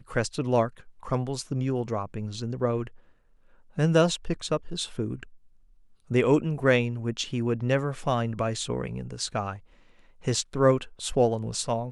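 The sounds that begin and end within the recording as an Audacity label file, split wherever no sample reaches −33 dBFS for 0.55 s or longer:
3.780000	5.230000	sound
6.110000	9.550000	sound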